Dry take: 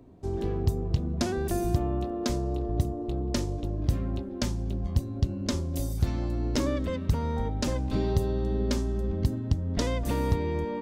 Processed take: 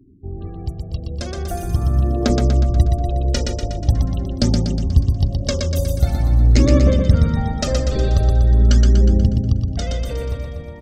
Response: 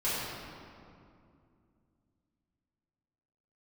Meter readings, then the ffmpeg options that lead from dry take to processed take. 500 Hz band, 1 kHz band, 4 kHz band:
+6.5 dB, +5.5 dB, +9.5 dB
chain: -filter_complex "[0:a]afftfilt=real='re*gte(hypot(re,im),0.00794)':imag='im*gte(hypot(re,im),0.00794)':win_size=1024:overlap=0.75,dynaudnorm=f=210:g=17:m=3.16,bandreject=f=50:t=h:w=6,bandreject=f=100:t=h:w=6,bandreject=f=150:t=h:w=6,bandreject=f=200:t=h:w=6,bandreject=f=250:t=h:w=6,bandreject=f=300:t=h:w=6,bandreject=f=350:t=h:w=6,bandreject=f=400:t=h:w=6,bandreject=f=450:t=h:w=6,aphaser=in_gain=1:out_gain=1:delay=2.1:decay=0.6:speed=0.44:type=triangular,asuperstop=centerf=980:order=4:qfactor=4.7,asplit=2[s0][s1];[s1]aecho=0:1:121|242|363|484|605|726|847|968:0.631|0.353|0.198|0.111|0.0621|0.0347|0.0195|0.0109[s2];[s0][s2]amix=inputs=2:normalize=0,volume=0.75"

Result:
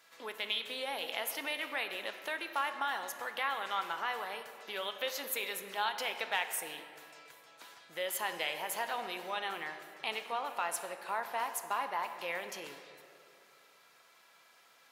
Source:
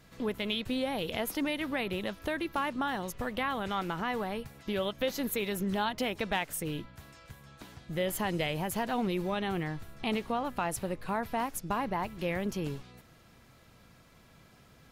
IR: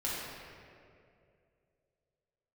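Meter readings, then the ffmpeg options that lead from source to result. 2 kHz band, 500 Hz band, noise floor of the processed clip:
+0.5 dB, -7.0 dB, -63 dBFS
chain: -filter_complex "[0:a]highpass=800,asplit=2[s0][s1];[1:a]atrim=start_sample=2205[s2];[s1][s2]afir=irnorm=-1:irlink=0,volume=0.282[s3];[s0][s3]amix=inputs=2:normalize=0,volume=0.841"

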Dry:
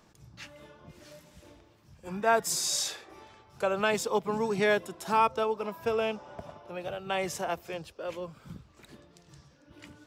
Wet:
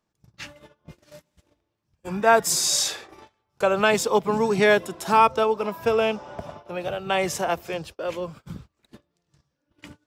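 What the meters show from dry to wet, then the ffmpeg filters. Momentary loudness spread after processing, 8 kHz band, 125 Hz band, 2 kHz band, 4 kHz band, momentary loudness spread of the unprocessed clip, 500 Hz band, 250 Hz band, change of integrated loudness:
22 LU, +7.5 dB, +7.5 dB, +7.5 dB, +7.5 dB, 21 LU, +7.5 dB, +7.5 dB, +7.5 dB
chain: -af "agate=range=0.0562:threshold=0.00355:ratio=16:detection=peak,volume=2.37"

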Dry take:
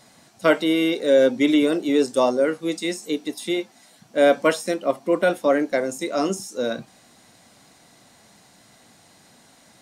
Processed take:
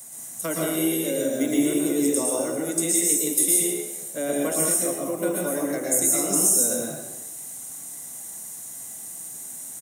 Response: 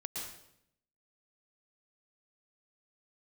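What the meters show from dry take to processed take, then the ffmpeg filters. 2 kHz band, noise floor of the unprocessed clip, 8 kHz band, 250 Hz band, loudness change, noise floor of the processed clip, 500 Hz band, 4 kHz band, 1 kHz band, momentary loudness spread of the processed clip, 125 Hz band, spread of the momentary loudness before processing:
-8.5 dB, -54 dBFS, +18.0 dB, -3.0 dB, -0.5 dB, -38 dBFS, -7.0 dB, -5.5 dB, -8.5 dB, 16 LU, +1.5 dB, 10 LU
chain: -filter_complex "[0:a]acrossover=split=250[s0][s1];[s1]acompressor=threshold=0.0316:ratio=2.5[s2];[s0][s2]amix=inputs=2:normalize=0,acrossover=split=110|520|1600[s3][s4][s5][s6];[s3]acrusher=samples=32:mix=1:aa=0.000001[s7];[s7][s4][s5][s6]amix=inputs=4:normalize=0,asplit=5[s8][s9][s10][s11][s12];[s9]adelay=128,afreqshift=71,volume=0.266[s13];[s10]adelay=256,afreqshift=142,volume=0.0955[s14];[s11]adelay=384,afreqshift=213,volume=0.0347[s15];[s12]adelay=512,afreqshift=284,volume=0.0124[s16];[s8][s13][s14][s15][s16]amix=inputs=5:normalize=0[s17];[1:a]atrim=start_sample=2205[s18];[s17][s18]afir=irnorm=-1:irlink=0,aexciter=amount=14.8:drive=5.9:freq=6800"

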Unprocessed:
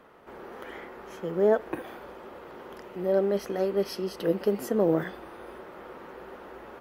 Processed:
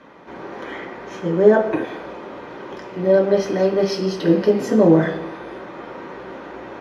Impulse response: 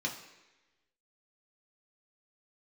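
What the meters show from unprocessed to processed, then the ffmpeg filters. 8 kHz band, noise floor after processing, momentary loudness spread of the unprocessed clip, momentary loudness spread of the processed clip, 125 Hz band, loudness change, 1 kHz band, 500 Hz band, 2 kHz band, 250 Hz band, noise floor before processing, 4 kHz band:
no reading, -37 dBFS, 20 LU, 20 LU, +12.5 dB, +9.5 dB, +9.0 dB, +9.5 dB, +11.5 dB, +12.0 dB, -47 dBFS, +10.0 dB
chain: -filter_complex "[0:a]lowpass=8300[s0];[1:a]atrim=start_sample=2205[s1];[s0][s1]afir=irnorm=-1:irlink=0,volume=2"

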